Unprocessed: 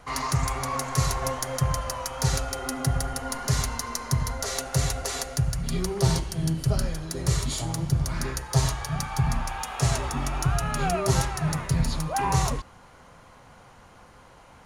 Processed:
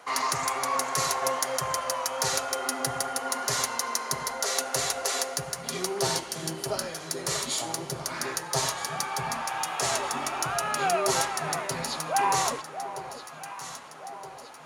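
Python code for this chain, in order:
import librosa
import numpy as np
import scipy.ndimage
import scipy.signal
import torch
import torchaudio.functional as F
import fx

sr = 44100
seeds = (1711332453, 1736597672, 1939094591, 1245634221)

y = scipy.signal.sosfilt(scipy.signal.butter(2, 400.0, 'highpass', fs=sr, output='sos'), x)
y = fx.echo_alternate(y, sr, ms=635, hz=920.0, feedback_pct=73, wet_db=-10.5)
y = y * librosa.db_to_amplitude(2.5)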